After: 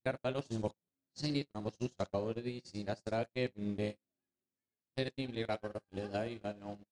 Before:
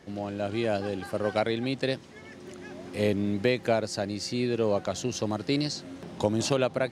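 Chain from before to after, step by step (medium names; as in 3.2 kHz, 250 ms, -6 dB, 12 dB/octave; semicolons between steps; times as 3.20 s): reverse the whole clip; vibrato 0.36 Hz 14 cents; on a send: flutter echo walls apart 10.8 m, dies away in 0.37 s; on the sum: compression 12:1, threshold -30 dBFS, peak gain reduction 13 dB; gate -32 dBFS, range -55 dB; elliptic low-pass 10 kHz; bass shelf 150 Hz +7 dB; trim +1.5 dB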